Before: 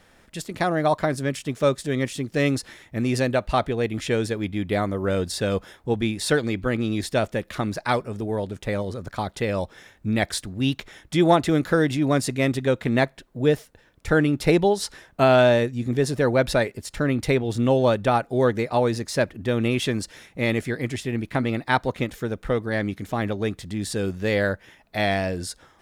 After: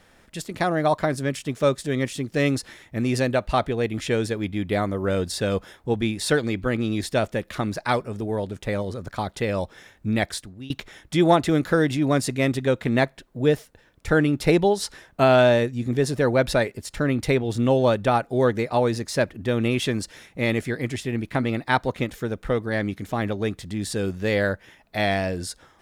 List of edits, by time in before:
10.17–10.70 s: fade out, to -22.5 dB

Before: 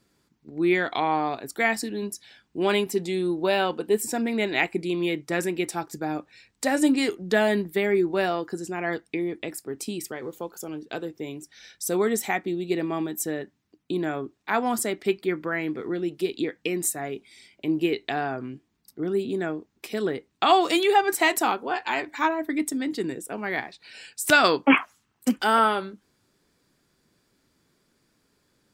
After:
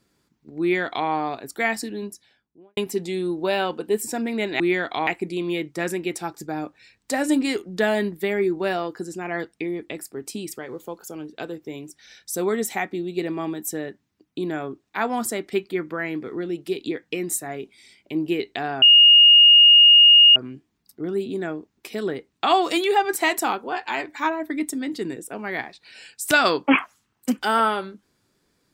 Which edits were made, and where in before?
0.61–1.08 s: copy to 4.60 s
1.84–2.77 s: studio fade out
18.35 s: add tone 2.85 kHz -8 dBFS 1.54 s

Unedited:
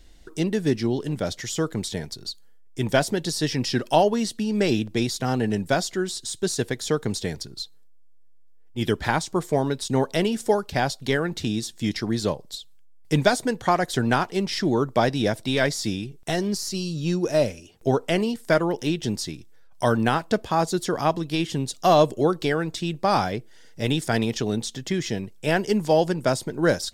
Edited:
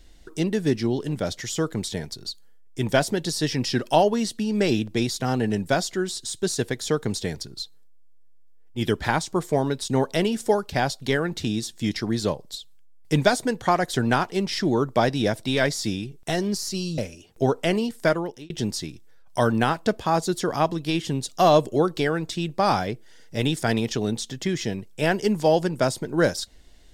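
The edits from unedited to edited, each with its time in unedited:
16.98–17.43 s: delete
18.49–18.95 s: fade out

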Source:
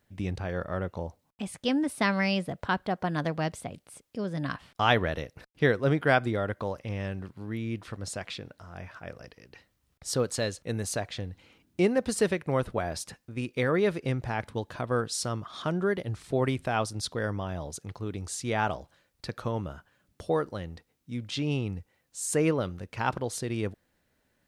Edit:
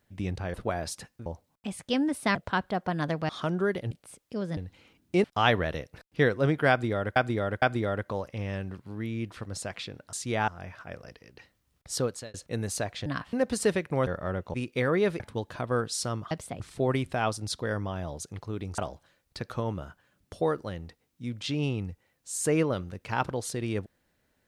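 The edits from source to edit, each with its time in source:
0.54–1.01 s: swap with 12.63–13.35 s
2.10–2.51 s: delete
3.45–3.74 s: swap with 15.51–16.13 s
4.40–4.67 s: swap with 11.22–11.89 s
6.13–6.59 s: loop, 3 plays
10.14–10.50 s: fade out linear
14.01–14.40 s: delete
18.31–18.66 s: move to 8.64 s

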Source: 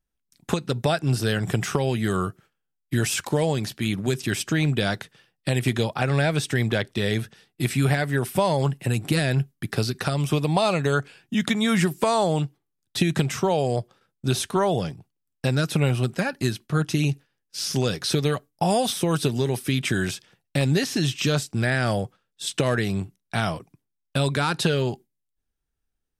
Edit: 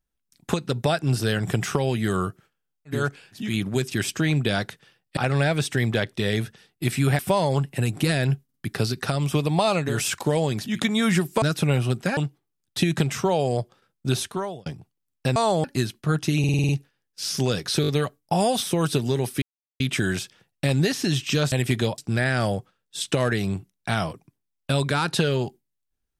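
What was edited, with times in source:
2.97–3.75 s: swap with 10.89–11.35 s, crossfade 0.24 s
5.49–5.95 s: move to 21.44 s
7.97–8.27 s: delete
9.52 s: stutter 0.05 s, 3 plays
12.08–12.36 s: swap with 15.55–16.30 s
14.30–14.85 s: fade out
17.05 s: stutter 0.05 s, 7 plays
18.18 s: stutter 0.02 s, 4 plays
19.72 s: insert silence 0.38 s

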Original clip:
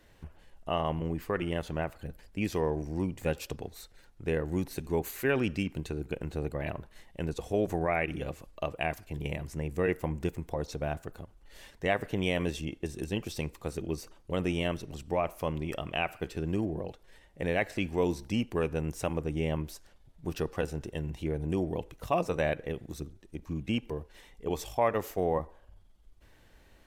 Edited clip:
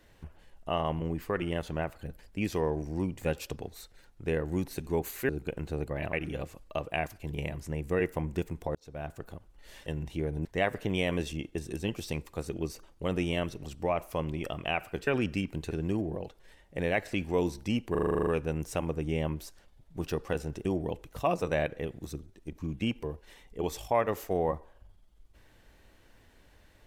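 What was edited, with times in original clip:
5.29–5.93 s: move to 16.35 s
6.77–8.00 s: delete
10.62–11.12 s: fade in
18.55 s: stutter 0.04 s, 10 plays
20.93–21.52 s: move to 11.73 s

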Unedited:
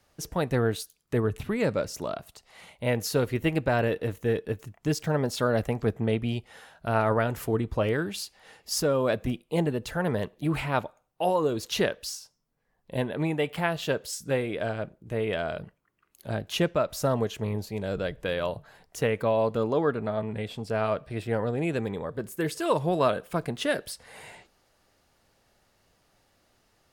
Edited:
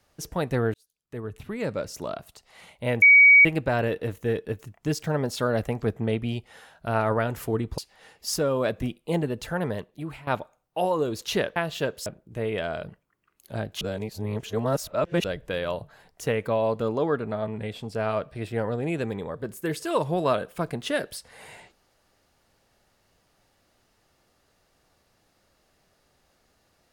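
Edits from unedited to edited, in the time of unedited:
0.74–2.11 s: fade in
3.02–3.45 s: bleep 2.26 kHz -10 dBFS
7.78–8.22 s: delete
10.00–10.71 s: fade out, to -17 dB
12.00–13.63 s: delete
14.13–14.81 s: delete
16.56–17.99 s: reverse

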